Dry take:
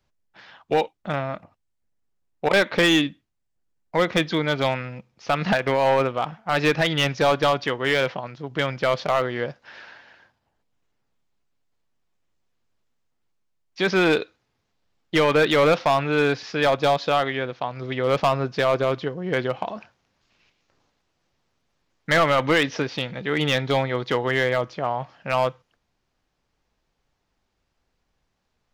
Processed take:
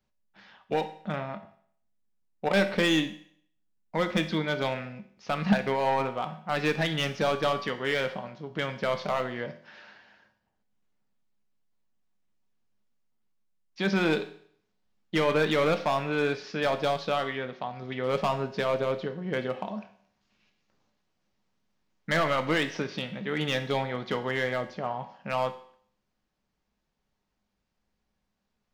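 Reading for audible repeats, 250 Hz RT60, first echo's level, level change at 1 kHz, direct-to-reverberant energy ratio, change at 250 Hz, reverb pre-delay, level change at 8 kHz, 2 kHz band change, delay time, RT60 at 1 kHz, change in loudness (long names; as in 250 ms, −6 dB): no echo audible, 0.60 s, no echo audible, −6.5 dB, 7.0 dB, −4.5 dB, 5 ms, −7.0 dB, −7.0 dB, no echo audible, 0.60 s, −6.5 dB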